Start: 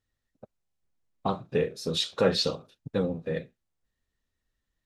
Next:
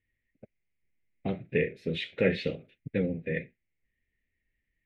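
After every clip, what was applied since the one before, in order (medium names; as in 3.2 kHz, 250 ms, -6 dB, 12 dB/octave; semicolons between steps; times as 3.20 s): FFT filter 380 Hz 0 dB, 650 Hz -6 dB, 1.1 kHz -25 dB, 2.1 kHz +14 dB, 5.1 kHz -24 dB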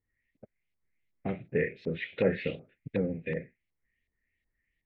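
LFO low-pass saw up 2.7 Hz 880–4200 Hz; trim -2 dB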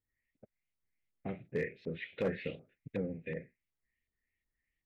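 hard clipper -19.5 dBFS, distortion -20 dB; trim -6.5 dB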